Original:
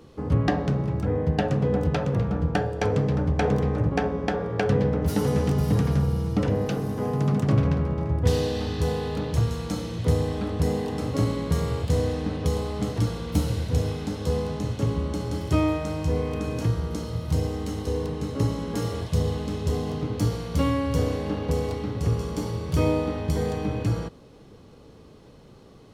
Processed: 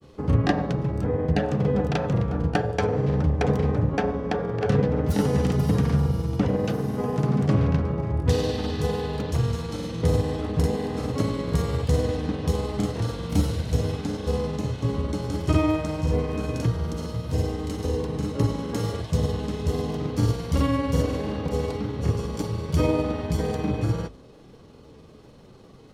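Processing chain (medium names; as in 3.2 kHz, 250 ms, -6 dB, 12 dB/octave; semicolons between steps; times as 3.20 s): granulator, spray 35 ms, pitch spread up and down by 0 st; hum notches 50/100 Hz; trim +2 dB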